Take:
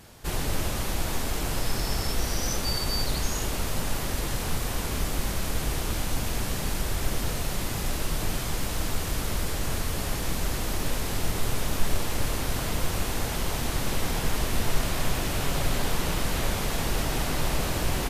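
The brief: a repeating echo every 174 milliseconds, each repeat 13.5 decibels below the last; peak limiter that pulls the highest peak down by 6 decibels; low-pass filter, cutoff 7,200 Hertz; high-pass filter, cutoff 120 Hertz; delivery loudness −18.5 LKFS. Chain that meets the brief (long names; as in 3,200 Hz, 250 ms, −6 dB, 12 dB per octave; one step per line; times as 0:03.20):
high-pass filter 120 Hz
low-pass filter 7,200 Hz
brickwall limiter −24 dBFS
repeating echo 174 ms, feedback 21%, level −13.5 dB
level +14.5 dB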